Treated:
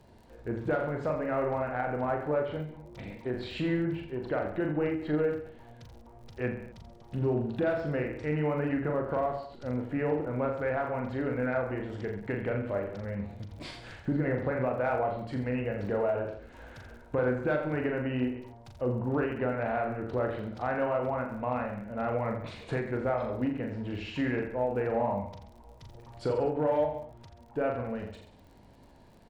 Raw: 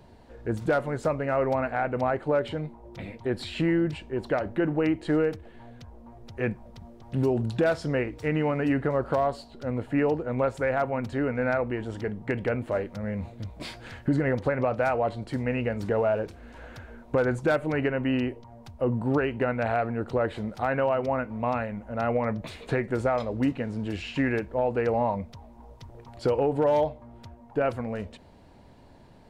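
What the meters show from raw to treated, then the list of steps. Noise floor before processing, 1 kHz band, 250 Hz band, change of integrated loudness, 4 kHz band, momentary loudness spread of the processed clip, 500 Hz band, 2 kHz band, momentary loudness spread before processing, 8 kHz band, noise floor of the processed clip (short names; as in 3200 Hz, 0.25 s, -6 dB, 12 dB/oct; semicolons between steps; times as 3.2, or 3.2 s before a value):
-52 dBFS, -4.0 dB, -4.0 dB, -4.0 dB, -6.0 dB, 13 LU, -4.0 dB, -4.5 dB, 11 LU, n/a, -54 dBFS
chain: treble ducked by the level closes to 2500 Hz, closed at -25 dBFS; reverse bouncing-ball echo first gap 40 ms, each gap 1.1×, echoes 5; in parallel at -10.5 dB: soft clip -19.5 dBFS, distortion -15 dB; on the sum: crackle 52/s -42 dBFS; ending taper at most 110 dB/s; gain -7.5 dB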